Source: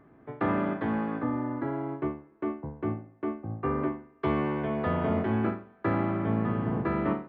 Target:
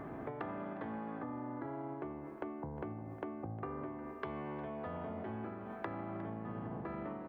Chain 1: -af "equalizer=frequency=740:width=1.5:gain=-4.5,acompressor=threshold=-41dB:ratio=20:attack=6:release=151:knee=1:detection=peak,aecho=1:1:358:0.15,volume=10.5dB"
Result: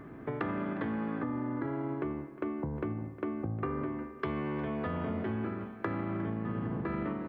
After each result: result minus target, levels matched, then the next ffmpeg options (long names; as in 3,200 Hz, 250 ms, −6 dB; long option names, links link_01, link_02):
downward compressor: peak gain reduction −10 dB; 1,000 Hz band −3.5 dB
-af "equalizer=frequency=740:width=1.5:gain=-4.5,acompressor=threshold=-49.5dB:ratio=20:attack=6:release=151:knee=1:detection=peak,aecho=1:1:358:0.15,volume=10.5dB"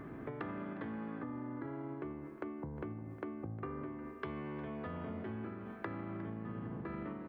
1,000 Hz band −3.5 dB
-af "equalizer=frequency=740:width=1.5:gain=5.5,acompressor=threshold=-49.5dB:ratio=20:attack=6:release=151:knee=1:detection=peak,aecho=1:1:358:0.15,volume=10.5dB"